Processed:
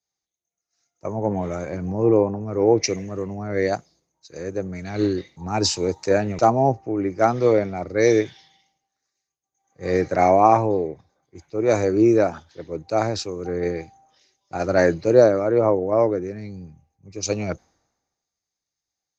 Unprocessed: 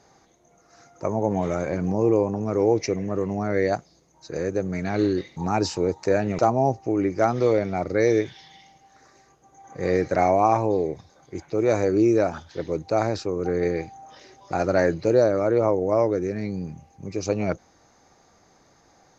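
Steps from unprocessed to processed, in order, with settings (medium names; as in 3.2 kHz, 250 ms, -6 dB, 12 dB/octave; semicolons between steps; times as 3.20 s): three bands expanded up and down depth 100%; trim +1 dB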